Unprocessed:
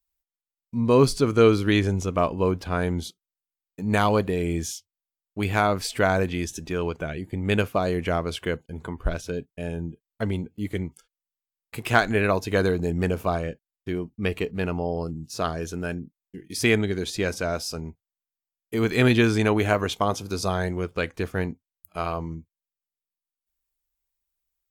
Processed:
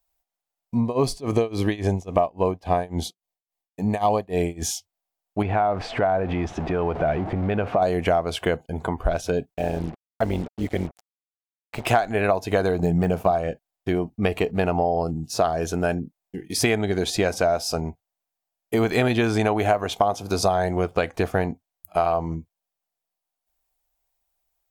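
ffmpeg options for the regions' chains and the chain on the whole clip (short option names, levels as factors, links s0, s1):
-filter_complex "[0:a]asettb=1/sr,asplit=3[s0][s1][s2];[s0]atrim=end=0.804[s3];[s1]atrim=start=0.8:end=4.62,asetpts=PTS-STARTPTS,afade=t=in:d=0.004:c=qsin,afade=t=out:st=3.816:d=0.004:c=qsin,tremolo=f=3.6:d=0.95,asuperstop=centerf=1400:order=4:qfactor=4.3[s4];[s2]atrim=start=4.616[s5];[s3][s4]acrossfade=d=0.004:c1=hsin:c2=qsin[s6];[s6][s5]acrossfade=d=0.004:c1=qsin:c2=hsin,asettb=1/sr,asplit=3[s7][s8][s9];[s7]atrim=end=5.424[s10];[s8]atrim=start=5.42:end=7.82,asetpts=PTS-STARTPTS,afade=t=in:d=0.004:c=qsin,afade=t=out:st=2.396:d=0.004:c=qsin,aeval=exprs='val(0)+0.5*0.02*sgn(val(0))':c=same,lowpass=2100,acompressor=threshold=0.0447:ratio=4:attack=3.2:release=140:knee=1:detection=peak[s11];[s9]atrim=start=7.816[s12];[s10][s11]acrossfade=d=0.004:c1=hsin:c2=qsin[s13];[s13][s12]acrossfade=d=0.004:c1=qsin:c2=hsin,asettb=1/sr,asplit=3[s14][s15][s16];[s14]atrim=end=9.544[s17];[s15]atrim=start=9.54:end=11.87,asetpts=PTS-STARTPTS,afade=t=in:d=0.004:c=qsin,afade=t=out:st=2.326:d=0.004:c=qsin,lowpass=5400,tremolo=f=140:d=0.667,acrusher=bits=7:mix=0:aa=0.5[s18];[s16]atrim=start=11.866[s19];[s17][s18]acrossfade=d=0.004:c1=hsin:c2=qsin[s20];[s20][s19]acrossfade=d=0.004:c1=qsin:c2=hsin,asettb=1/sr,asplit=3[s21][s22][s23];[s21]atrim=end=12.824[s24];[s22]atrim=start=12.82:end=13.31,asetpts=PTS-STARTPTS,afade=t=in:d=0.004:c=qsin,afade=t=out:st=0.486:d=0.004:c=qsin,agate=range=0.0224:threshold=0.0141:ratio=3:release=100:detection=peak,deesser=0.95,equalizer=f=170:t=o:w=0.26:g=8[s25];[s23]atrim=start=13.306[s26];[s24][s25]acrossfade=d=0.004:c1=hsin:c2=qsin[s27];[s27][s26]acrossfade=d=0.004:c1=qsin:c2=hsin,equalizer=f=720:t=o:w=0.66:g=14,acompressor=threshold=0.0708:ratio=6,volume=1.88"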